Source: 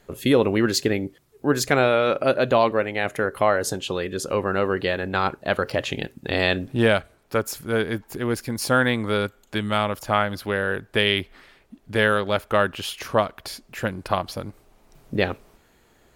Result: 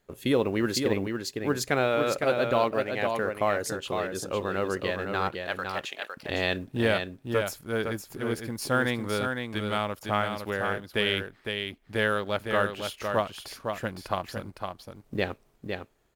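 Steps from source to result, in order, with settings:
mu-law and A-law mismatch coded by A
0:05.38–0:06.16: high-pass filter 800 Hz 12 dB per octave
single-tap delay 508 ms −5.5 dB
level −6 dB

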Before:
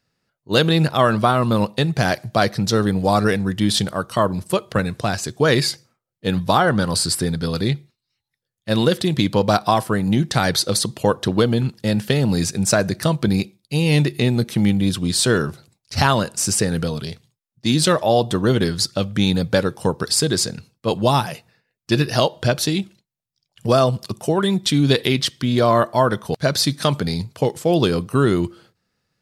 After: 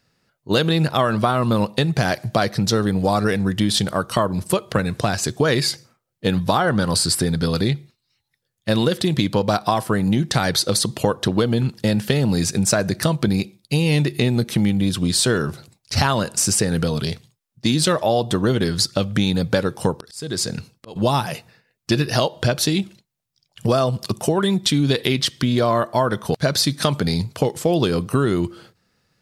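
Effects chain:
downward compressor 3 to 1, threshold −24 dBFS, peak gain reduction 10.5 dB
0:19.92–0:20.96: volume swells 427 ms
level +6.5 dB

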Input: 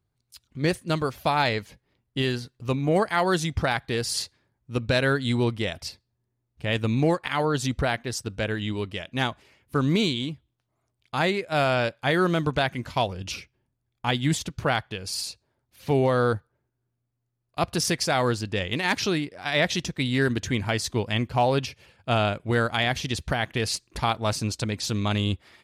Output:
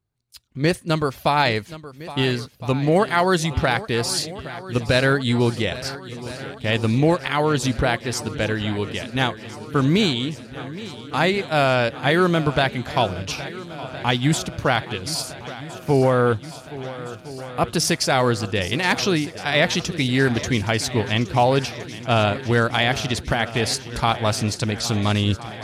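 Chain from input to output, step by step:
noise gate −51 dBFS, range −7 dB
0:15.22–0:17.70: parametric band 4,000 Hz −13.5 dB 0.77 octaves
feedback echo with a long and a short gap by turns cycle 1,364 ms, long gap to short 1.5 to 1, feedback 63%, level −16 dB
level +4.5 dB

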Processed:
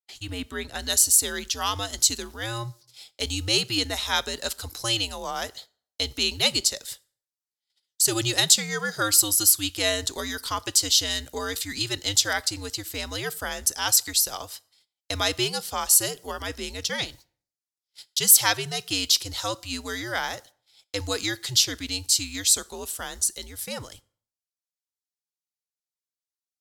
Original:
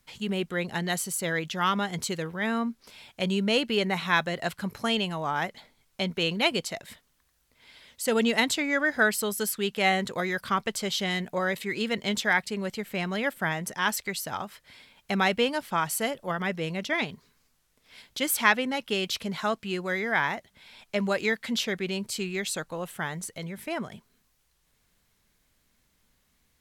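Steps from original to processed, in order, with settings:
high-pass filter 330 Hz 6 dB per octave
noise gate −48 dBFS, range −37 dB
high shelf with overshoot 3,400 Hz +6.5 dB, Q 1.5, from 0:00.79 +13.5 dB
frequency shifter −110 Hz
convolution reverb RT60 0.50 s, pre-delay 12 ms, DRR 20 dB
level −1 dB

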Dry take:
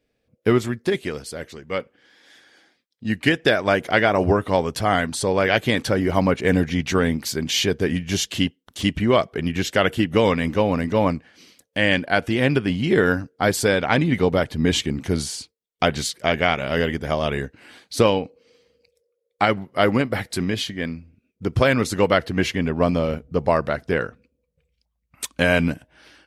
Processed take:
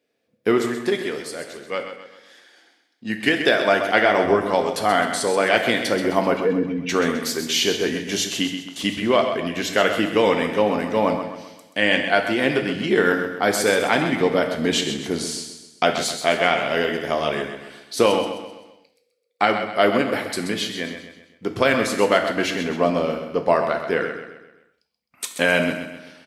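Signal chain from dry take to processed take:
0:06.37–0:06.89: expanding power law on the bin magnitudes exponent 2.3
high-pass filter 240 Hz 12 dB per octave
on a send: repeating echo 130 ms, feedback 45%, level −9 dB
on the sum: reverb whose tail is shaped and stops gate 220 ms falling, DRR 6 dB

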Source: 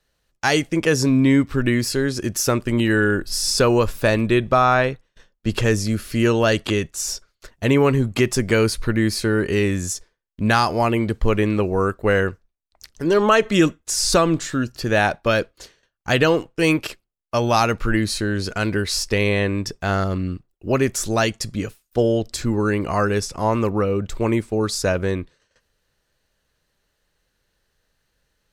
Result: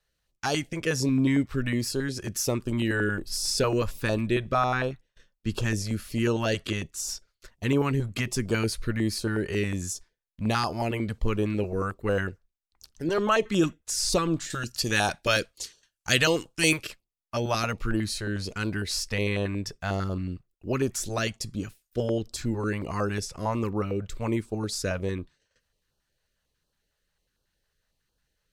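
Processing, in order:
0:14.50–0:16.83: parametric band 8,300 Hz +14.5 dB 2.6 octaves
notch on a step sequencer 11 Hz 270–2,000 Hz
level −6.5 dB

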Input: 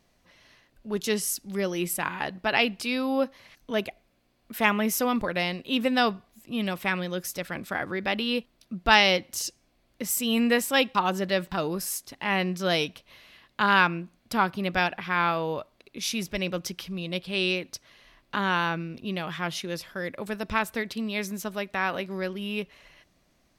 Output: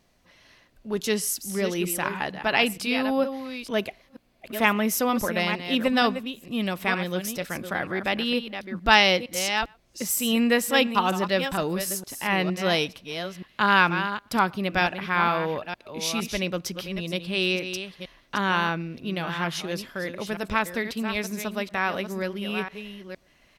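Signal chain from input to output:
delay that plays each chunk backwards 463 ms, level −9 dB
far-end echo of a speakerphone 120 ms, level −29 dB
level +1.5 dB

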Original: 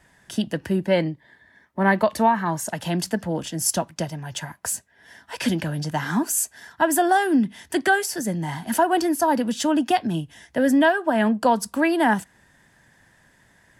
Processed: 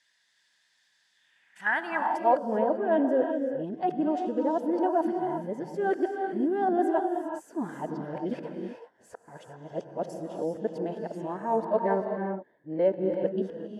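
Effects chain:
played backwards from end to start
reverb whose tail is shaped and stops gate 420 ms rising, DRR 4 dB
band-pass filter sweep 4,200 Hz → 460 Hz, 0:01.12–0:02.56

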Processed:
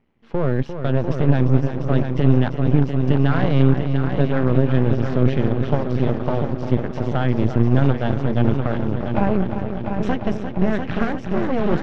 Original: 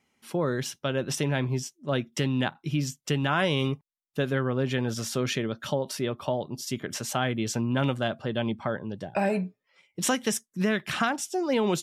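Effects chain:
RIAA equalisation playback
on a send: echo machine with several playback heads 348 ms, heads first and second, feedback 66%, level −9 dB
on the sum: half-wave rectification
high-frequency loss of the air 210 metres
level +5 dB

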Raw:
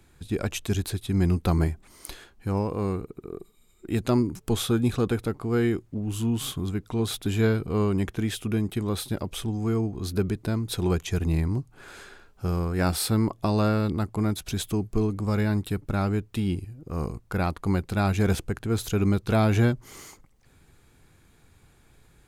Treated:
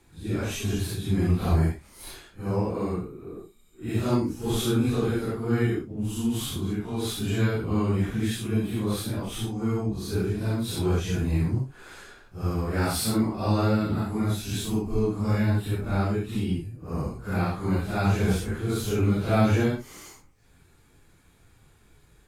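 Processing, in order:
random phases in long frames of 200 ms

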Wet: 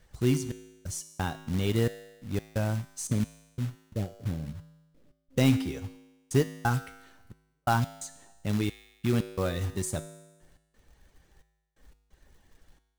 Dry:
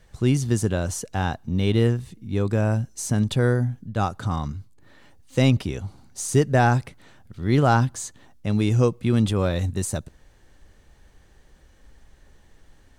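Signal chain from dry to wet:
0:03.07–0:05.38: Butterworth low-pass 580 Hz 48 dB per octave
reverb reduction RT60 0.58 s
floating-point word with a short mantissa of 2 bits
gate pattern "xxx..x.x" 88 BPM −60 dB
tuned comb filter 53 Hz, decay 1.1 s, harmonics odd, mix 70%
level +4.5 dB

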